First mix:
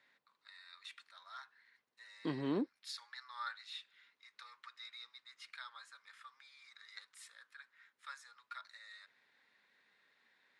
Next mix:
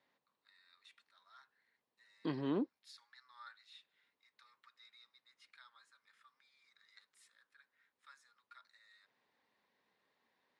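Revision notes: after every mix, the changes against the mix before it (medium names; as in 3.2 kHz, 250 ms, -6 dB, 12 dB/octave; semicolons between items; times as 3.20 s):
first voice -11.5 dB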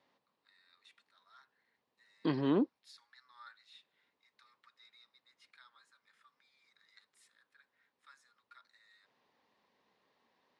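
second voice +6.0 dB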